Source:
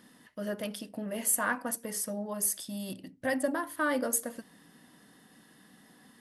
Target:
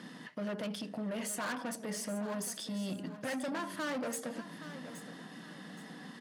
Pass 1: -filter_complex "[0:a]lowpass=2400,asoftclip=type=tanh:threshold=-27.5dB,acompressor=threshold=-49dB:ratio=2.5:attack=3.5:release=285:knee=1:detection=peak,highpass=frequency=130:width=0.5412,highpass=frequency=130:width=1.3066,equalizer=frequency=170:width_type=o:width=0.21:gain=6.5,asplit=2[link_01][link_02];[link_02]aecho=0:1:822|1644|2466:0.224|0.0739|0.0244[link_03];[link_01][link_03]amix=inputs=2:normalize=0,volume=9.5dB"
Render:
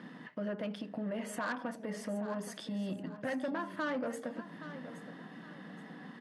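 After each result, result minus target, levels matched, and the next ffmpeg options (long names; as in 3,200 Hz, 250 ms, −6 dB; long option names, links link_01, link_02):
8,000 Hz band −10.5 dB; soft clipping: distortion −7 dB
-filter_complex "[0:a]lowpass=5700,asoftclip=type=tanh:threshold=-27.5dB,acompressor=threshold=-49dB:ratio=2.5:attack=3.5:release=285:knee=1:detection=peak,highpass=frequency=130:width=0.5412,highpass=frequency=130:width=1.3066,equalizer=frequency=170:width_type=o:width=0.21:gain=6.5,asplit=2[link_01][link_02];[link_02]aecho=0:1:822|1644|2466:0.224|0.0739|0.0244[link_03];[link_01][link_03]amix=inputs=2:normalize=0,volume=9.5dB"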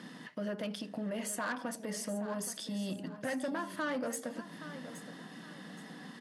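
soft clipping: distortion −7 dB
-filter_complex "[0:a]lowpass=5700,asoftclip=type=tanh:threshold=-36.5dB,acompressor=threshold=-49dB:ratio=2.5:attack=3.5:release=285:knee=1:detection=peak,highpass=frequency=130:width=0.5412,highpass=frequency=130:width=1.3066,equalizer=frequency=170:width_type=o:width=0.21:gain=6.5,asplit=2[link_01][link_02];[link_02]aecho=0:1:822|1644|2466:0.224|0.0739|0.0244[link_03];[link_01][link_03]amix=inputs=2:normalize=0,volume=9.5dB"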